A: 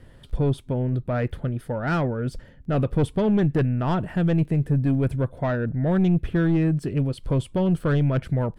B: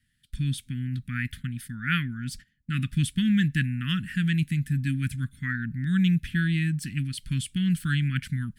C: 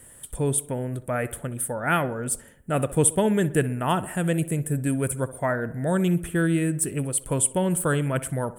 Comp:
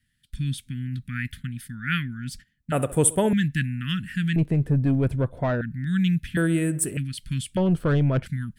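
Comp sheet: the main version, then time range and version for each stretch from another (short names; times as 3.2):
B
2.72–3.33 from C
4.36–5.61 from A
6.37–6.97 from C
7.57–8.26 from A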